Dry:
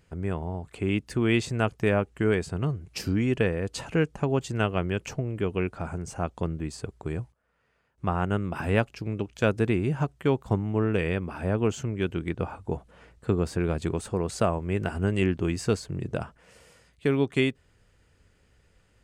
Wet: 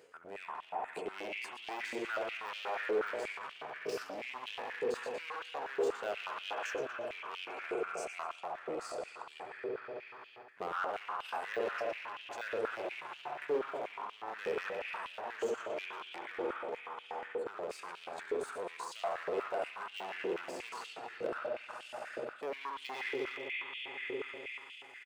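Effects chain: feedback echo 86 ms, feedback 45%, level -11 dB; spring tank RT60 3.1 s, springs 47 ms, chirp 55 ms, DRR 0.5 dB; tempo 0.76×; de-esser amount 85%; in parallel at +2 dB: limiter -19.5 dBFS, peak gain reduction 11 dB; on the sum: hard clip -18.5 dBFS, distortion -10 dB; reverse; compressor 16:1, threshold -32 dBFS, peak gain reduction 12.5 dB; reverse; stepped high-pass 8.3 Hz 450–3000 Hz; gain -4 dB

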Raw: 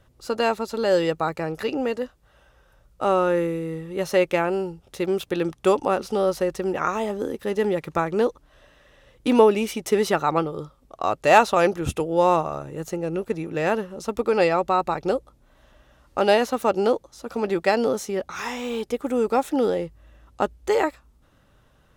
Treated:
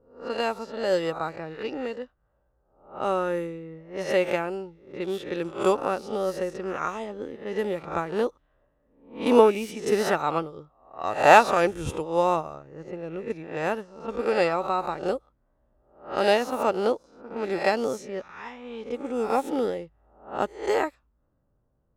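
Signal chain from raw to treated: spectral swells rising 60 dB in 0.62 s; low-pass opened by the level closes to 660 Hz, open at -17.5 dBFS; upward expander 1.5:1, over -35 dBFS; gain -1 dB

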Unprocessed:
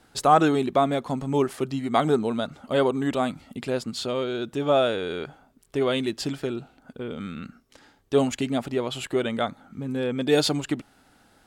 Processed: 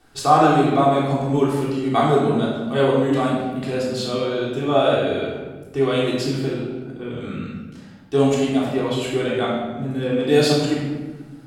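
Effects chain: shoebox room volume 870 m³, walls mixed, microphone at 3.5 m; gain -3 dB

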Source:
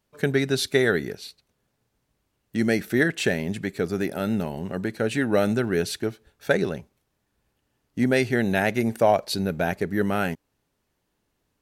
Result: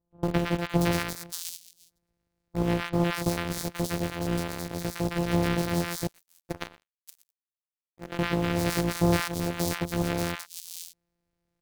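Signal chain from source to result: sample sorter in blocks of 256 samples; three bands offset in time lows, mids, highs 0.11/0.58 s, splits 1000/4000 Hz; in parallel at -9.5 dB: bit-crush 4-bit; 6.07–8.19 on the sum: power-law curve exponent 3; gain -5.5 dB

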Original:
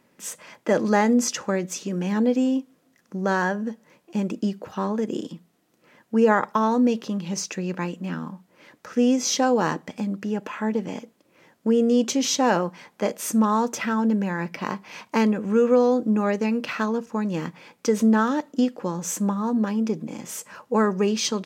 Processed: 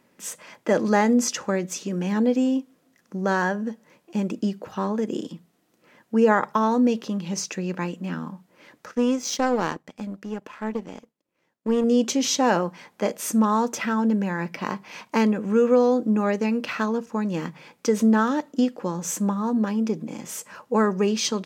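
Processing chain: notches 50/100/150 Hz; 8.91–11.84 power-law curve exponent 1.4

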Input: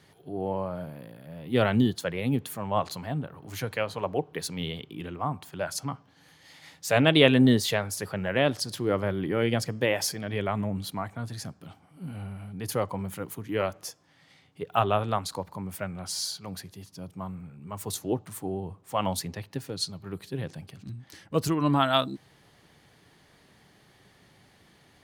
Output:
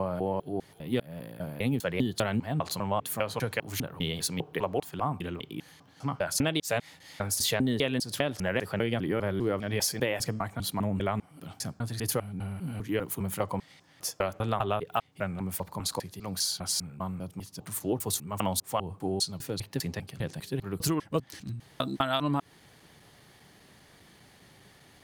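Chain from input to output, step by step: slices in reverse order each 0.2 s, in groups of 4; high shelf 6800 Hz +5.5 dB; compressor 8:1, threshold -26 dBFS, peak gain reduction 14 dB; gain +2 dB

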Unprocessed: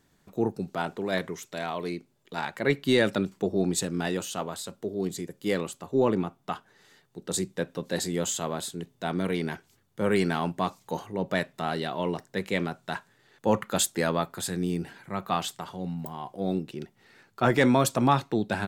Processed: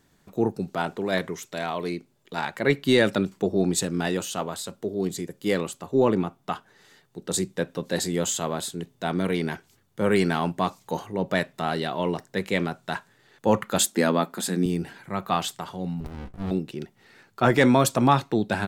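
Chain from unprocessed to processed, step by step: 13.79–14.66 resonant low shelf 150 Hz -11.5 dB, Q 3; 16–16.51 running maximum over 65 samples; gain +3 dB

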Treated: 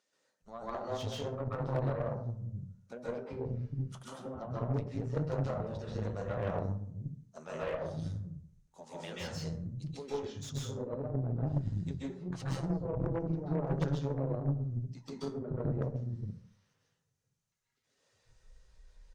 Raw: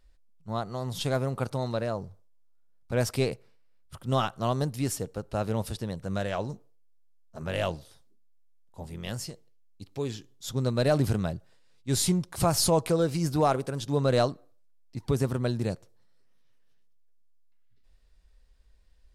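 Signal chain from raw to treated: bin magnitudes rounded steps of 15 dB; treble ducked by the level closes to 380 Hz, closed at -22.5 dBFS; thirty-one-band EQ 315 Hz -6 dB, 6300 Hz +10 dB, 12500 Hz -10 dB; compressor 4:1, threshold -37 dBFS, peak gain reduction 12.5 dB; flange 0.48 Hz, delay 9.7 ms, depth 3.9 ms, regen -58%; bands offset in time highs, lows 0.42 s, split 220 Hz; plate-style reverb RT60 0.57 s, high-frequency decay 0.5×, pre-delay 0.12 s, DRR -7 dB; added harmonics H 6 -11 dB, 8 -17 dB, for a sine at -21 dBFS; slew limiter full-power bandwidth 34 Hz

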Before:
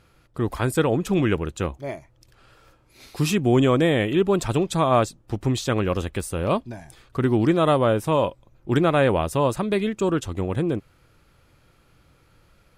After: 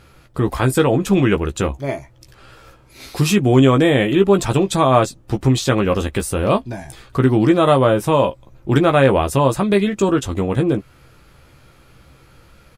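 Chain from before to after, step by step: in parallel at +0.5 dB: compressor 5:1, threshold -29 dBFS, peak gain reduction 14 dB; on the sum: hard clip -7 dBFS, distortion -49 dB; doubler 15 ms -6.5 dB; gain +2.5 dB

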